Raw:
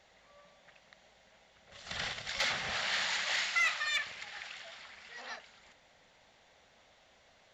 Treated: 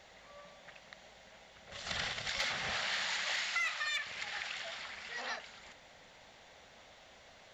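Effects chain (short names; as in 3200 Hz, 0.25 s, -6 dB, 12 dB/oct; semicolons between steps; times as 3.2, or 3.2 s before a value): compressor 3:1, threshold -42 dBFS, peak gain reduction 11.5 dB; gain +6 dB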